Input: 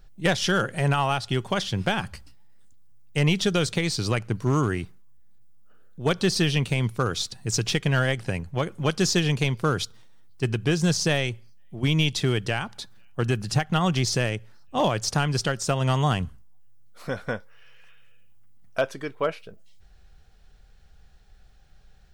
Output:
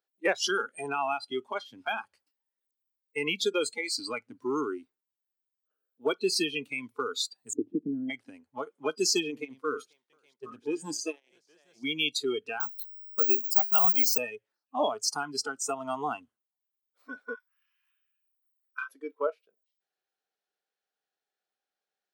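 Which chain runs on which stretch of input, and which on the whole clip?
7.53–8.1 synth low-pass 290 Hz, resonance Q 3.4 + three-band squash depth 40%
9.28–11.84 tapped delay 83/487/817 ms -13/-17/-12 dB + core saturation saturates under 300 Hz
12.6–14.18 bell 4600 Hz -4 dB 0.3 oct + notches 50/100/150/200/250/300/350/400/450/500 Hz + careless resampling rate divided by 2×, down none, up zero stuff
17.34–18.89 brick-wall FIR high-pass 890 Hz + doubler 31 ms -5 dB
whole clip: spectral noise reduction 24 dB; HPF 320 Hz 24 dB/oct; dynamic EQ 1100 Hz, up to -6 dB, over -41 dBFS, Q 1.1

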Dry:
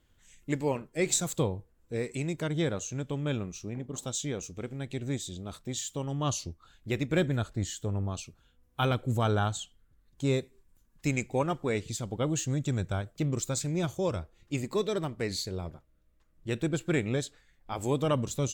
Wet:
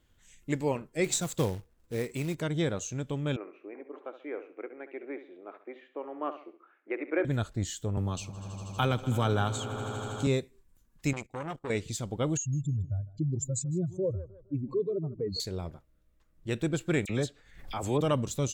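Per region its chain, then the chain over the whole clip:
1.04–2.35 high shelf 6700 Hz -5 dB + short-mantissa float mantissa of 2-bit
3.36–7.25 Chebyshev band-pass 310–2300 Hz, order 4 + feedback echo 68 ms, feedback 36%, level -12 dB
7.97–10.27 notch 680 Hz, Q 15 + swelling echo 80 ms, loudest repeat 5, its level -18 dB + three-band squash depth 40%
11.13–11.7 gate -42 dBFS, range -19 dB + compressor, threshold -28 dBFS + core saturation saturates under 1100 Hz
12.37–15.4 spectral contrast raised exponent 2.8 + tape echo 0.155 s, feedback 40%, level -15.5 dB, low-pass 3300 Hz
17.05–18.01 high shelf 5700 Hz -4.5 dB + dispersion lows, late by 45 ms, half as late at 2400 Hz + backwards sustainer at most 88 dB/s
whole clip: dry

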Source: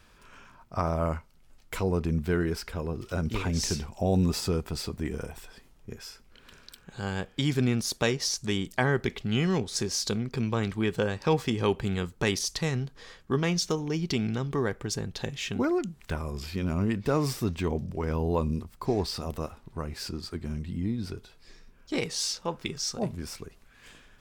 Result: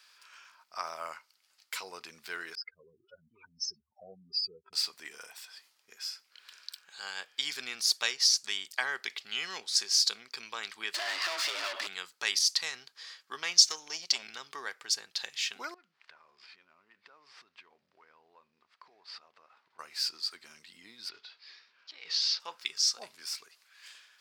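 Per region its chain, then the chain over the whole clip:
2.55–4.73 spectral contrast raised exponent 3.4 + air absorption 100 m + mismatched tape noise reduction decoder only
10.94–11.87 compressor 2.5:1, threshold -34 dBFS + frequency shift +180 Hz + overdrive pedal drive 33 dB, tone 2800 Hz, clips at -21 dBFS
13.57–14.23 bell 6500 Hz +7.5 dB 0.91 oct + core saturation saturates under 740 Hz
15.74–19.79 CVSD 64 kbps + LPF 2100 Hz + compressor 8:1, threshold -42 dBFS
21.09–22.4 block floating point 5-bit + LPF 4400 Hz 24 dB/oct + negative-ratio compressor -38 dBFS
whole clip: HPF 1400 Hz 12 dB/oct; bell 4700 Hz +8.5 dB 0.52 oct

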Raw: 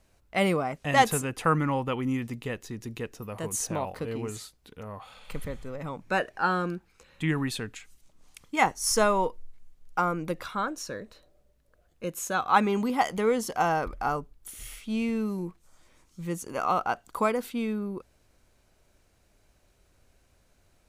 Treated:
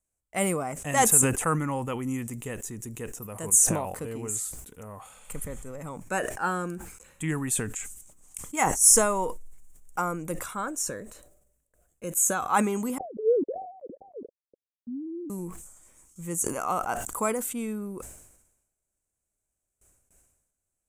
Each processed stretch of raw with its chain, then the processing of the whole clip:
12.98–15.3 sine-wave speech + steep low-pass 540 Hz 72 dB/oct
whole clip: gate with hold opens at -51 dBFS; resonant high shelf 5900 Hz +11 dB, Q 3; sustainer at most 60 dB/s; gain -2.5 dB

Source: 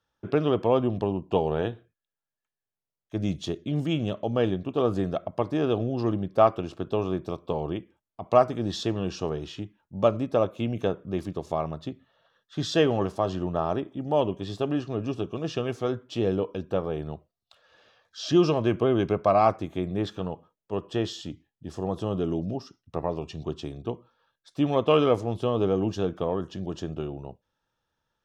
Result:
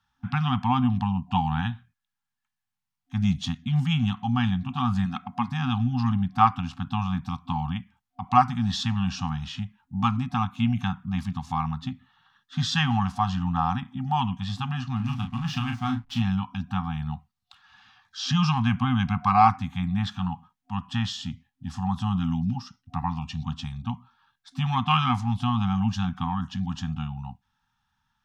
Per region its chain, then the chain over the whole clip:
5.05–5.48 low shelf 400 Hz -9 dB + small resonant body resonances 220/650/2500 Hz, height 13 dB, ringing for 85 ms
14.96–16.22 backlash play -44 dBFS + doubler 35 ms -6 dB
whole clip: FFT band-reject 260–730 Hz; high shelf 6900 Hz -7.5 dB; gain +6 dB

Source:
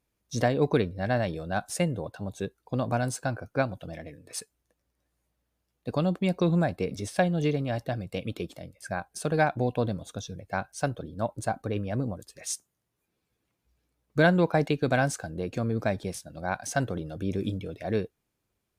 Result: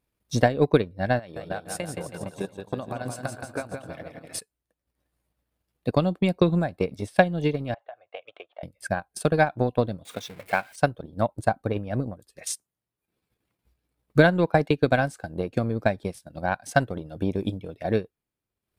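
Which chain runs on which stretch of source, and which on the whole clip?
1.19–4.39 low shelf 200 Hz -8.5 dB + compressor, threshold -30 dBFS + bouncing-ball echo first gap 0.17 s, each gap 0.9×, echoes 5
7.74–8.63 elliptic band-pass 670–3300 Hz, stop band 50 dB + tilt -4 dB/oct + compressor 8:1, threshold -37 dBFS
10.05–10.76 zero-crossing step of -38.5 dBFS + HPF 340 Hz 6 dB/oct + bell 2200 Hz +8 dB 0.51 oct
whole clip: bell 6300 Hz -6.5 dB 0.44 oct; transient shaper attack +8 dB, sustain -8 dB

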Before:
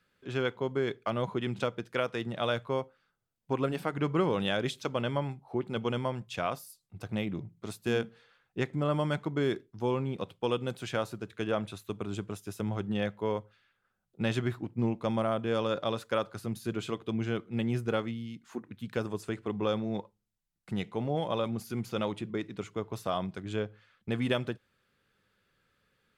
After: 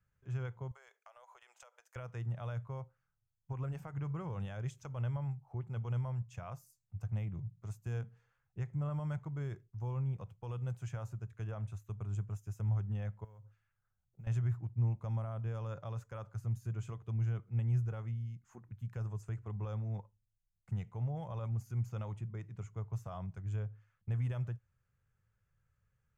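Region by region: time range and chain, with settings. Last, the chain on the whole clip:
0.71–1.96 steep high-pass 560 Hz + compressor 8:1, threshold -42 dBFS + high shelf 5200 Hz +11.5 dB
13.24–14.27 compressor 16:1, threshold -43 dBFS + modulation noise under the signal 31 dB
whole clip: band shelf 6500 Hz -9 dB; limiter -22 dBFS; EQ curve 120 Hz 0 dB, 260 Hz -25 dB, 440 Hz -21 dB, 860 Hz -15 dB, 2200 Hz -20 dB, 3700 Hz -26 dB, 6600 Hz -3 dB, 11000 Hz -17 dB; gain +4.5 dB

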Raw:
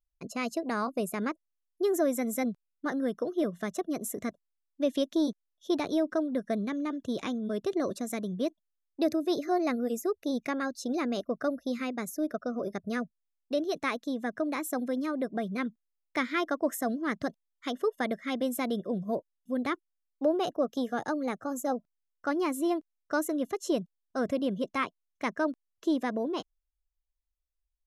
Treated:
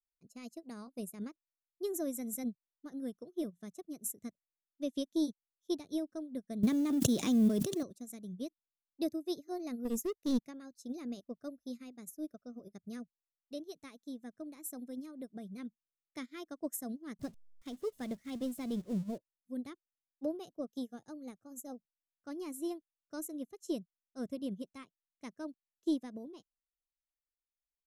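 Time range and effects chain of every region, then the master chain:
6.63–7.83 G.711 law mismatch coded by mu + HPF 140 Hz + fast leveller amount 100%
9.85–10.39 high shelf 7300 Hz -6.5 dB + sample leveller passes 2
17.19–19.18 zero-crossing step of -35 dBFS + LPF 3900 Hz 6 dB/oct
whole clip: EQ curve 140 Hz 0 dB, 700 Hz -13 dB, 1600 Hz -16 dB, 8500 Hz +2 dB; upward expander 2.5:1, over -46 dBFS; gain +6 dB

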